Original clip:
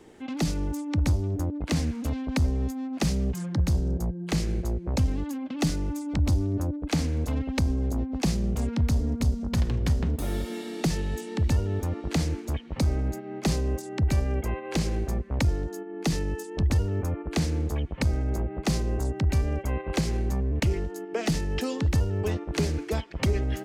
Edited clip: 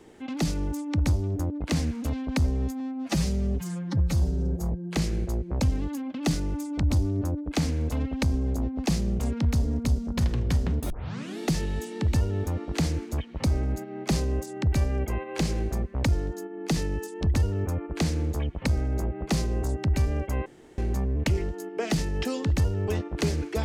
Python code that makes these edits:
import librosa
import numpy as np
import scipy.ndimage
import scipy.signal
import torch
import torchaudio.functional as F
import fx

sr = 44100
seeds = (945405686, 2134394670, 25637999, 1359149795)

y = fx.edit(x, sr, fx.stretch_span(start_s=2.8, length_s=1.28, factor=1.5),
    fx.tape_start(start_s=10.26, length_s=0.48),
    fx.room_tone_fill(start_s=19.82, length_s=0.32), tone=tone)